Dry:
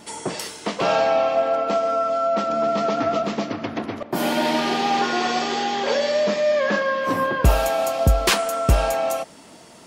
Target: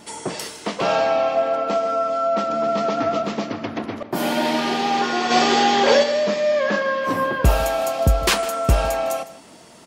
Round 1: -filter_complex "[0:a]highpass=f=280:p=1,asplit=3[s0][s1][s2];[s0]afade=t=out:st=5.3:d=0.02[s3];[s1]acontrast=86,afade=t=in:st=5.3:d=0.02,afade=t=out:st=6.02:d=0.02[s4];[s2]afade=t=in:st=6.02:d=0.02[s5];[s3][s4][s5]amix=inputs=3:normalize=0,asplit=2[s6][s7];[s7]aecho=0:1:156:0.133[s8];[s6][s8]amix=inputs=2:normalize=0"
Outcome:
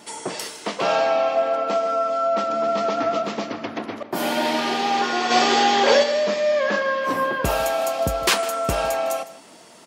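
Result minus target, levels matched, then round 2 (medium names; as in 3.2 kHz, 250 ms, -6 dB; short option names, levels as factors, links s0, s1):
250 Hz band -2.5 dB
-filter_complex "[0:a]asplit=3[s0][s1][s2];[s0]afade=t=out:st=5.3:d=0.02[s3];[s1]acontrast=86,afade=t=in:st=5.3:d=0.02,afade=t=out:st=6.02:d=0.02[s4];[s2]afade=t=in:st=6.02:d=0.02[s5];[s3][s4][s5]amix=inputs=3:normalize=0,asplit=2[s6][s7];[s7]aecho=0:1:156:0.133[s8];[s6][s8]amix=inputs=2:normalize=0"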